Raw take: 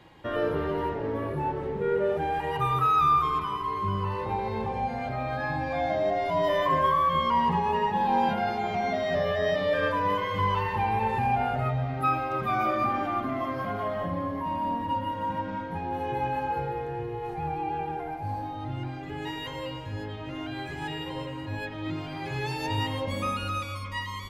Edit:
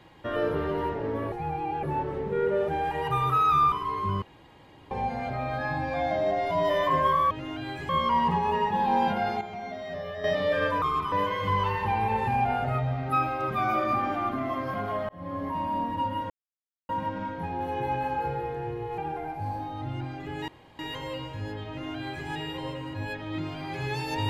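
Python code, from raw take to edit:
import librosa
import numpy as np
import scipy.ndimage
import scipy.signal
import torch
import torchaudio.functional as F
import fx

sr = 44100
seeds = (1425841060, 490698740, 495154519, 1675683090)

y = fx.edit(x, sr, fx.move(start_s=3.21, length_s=0.3, to_s=10.03),
    fx.room_tone_fill(start_s=4.01, length_s=0.69),
    fx.clip_gain(start_s=8.62, length_s=0.83, db=-9.0),
    fx.fade_in_span(start_s=14.0, length_s=0.34),
    fx.insert_silence(at_s=15.21, length_s=0.59),
    fx.move(start_s=17.3, length_s=0.51, to_s=1.32),
    fx.insert_room_tone(at_s=19.31, length_s=0.31),
    fx.duplicate(start_s=20.21, length_s=0.58, to_s=7.1), tone=tone)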